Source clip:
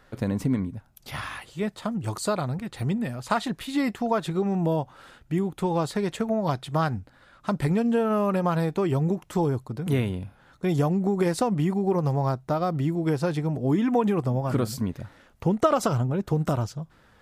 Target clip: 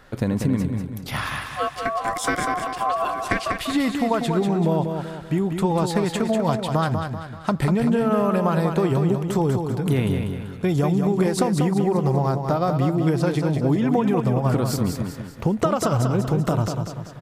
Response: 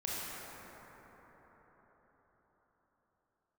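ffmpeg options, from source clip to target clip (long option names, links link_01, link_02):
-filter_complex "[0:a]asettb=1/sr,asplit=3[link_01][link_02][link_03];[link_01]atrim=end=1.474[link_04];[link_02]atrim=start=1.47:end=3.55,asetpts=PTS-STARTPTS,afade=type=in:duration=0.004:curve=qsin,afade=type=out:start_time=2.076:duration=0.004:curve=qsin,aeval=exprs='val(0)*sin(2*PI*900*n/s)':channel_layout=same[link_05];[link_03]atrim=start=3.546[link_06];[link_04][link_05]acrossfade=duration=0.004:curve1=hsin:curve2=qsin[link_07];[link_07][link_06]acrossfade=duration=0.004:curve1=qsin:curve2=hsin,acompressor=threshold=-24dB:ratio=6,aecho=1:1:193|386|579|772|965:0.501|0.221|0.097|0.0427|0.0188,volume=6.5dB"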